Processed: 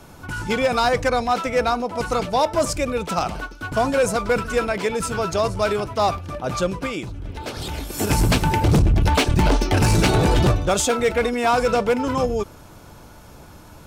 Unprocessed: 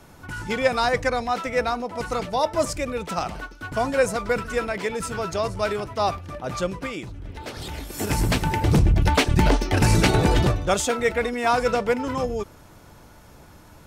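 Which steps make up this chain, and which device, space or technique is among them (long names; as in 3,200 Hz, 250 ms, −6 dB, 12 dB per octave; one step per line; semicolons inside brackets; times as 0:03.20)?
parametric band 1,900 Hz −6 dB 0.22 octaves
limiter into clipper (brickwall limiter −13 dBFS, peak gain reduction 6 dB; hard clipping −16.5 dBFS, distortion −19 dB)
level +4.5 dB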